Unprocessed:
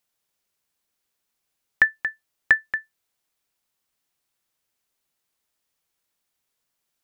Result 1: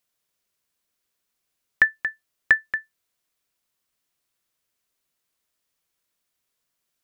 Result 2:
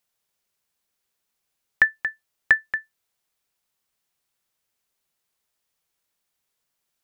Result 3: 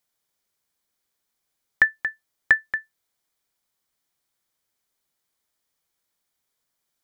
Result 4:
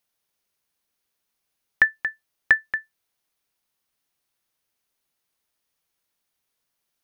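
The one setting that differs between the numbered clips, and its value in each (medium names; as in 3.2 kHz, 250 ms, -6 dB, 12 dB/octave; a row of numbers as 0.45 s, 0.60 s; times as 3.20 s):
band-stop, frequency: 830 Hz, 290 Hz, 2.7 kHz, 7.5 kHz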